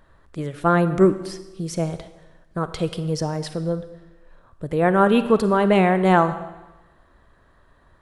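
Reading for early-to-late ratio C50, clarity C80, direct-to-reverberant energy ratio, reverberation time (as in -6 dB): 12.5 dB, 14.5 dB, 12.0 dB, 1.1 s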